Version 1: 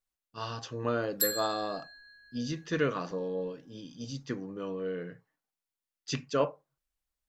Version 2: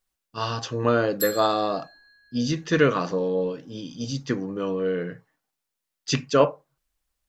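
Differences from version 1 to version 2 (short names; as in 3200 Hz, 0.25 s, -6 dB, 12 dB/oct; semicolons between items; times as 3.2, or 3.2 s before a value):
speech +9.5 dB; reverb: off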